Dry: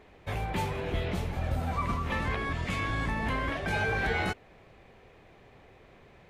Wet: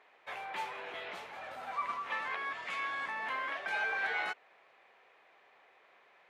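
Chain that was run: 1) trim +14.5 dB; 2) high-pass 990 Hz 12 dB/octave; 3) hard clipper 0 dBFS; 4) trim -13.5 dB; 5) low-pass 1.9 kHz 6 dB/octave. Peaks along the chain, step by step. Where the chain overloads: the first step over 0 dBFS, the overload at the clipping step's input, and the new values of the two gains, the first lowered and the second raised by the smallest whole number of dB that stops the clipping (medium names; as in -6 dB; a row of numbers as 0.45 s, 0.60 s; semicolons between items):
-4.0 dBFS, -5.0 dBFS, -5.0 dBFS, -18.5 dBFS, -21.5 dBFS; nothing clips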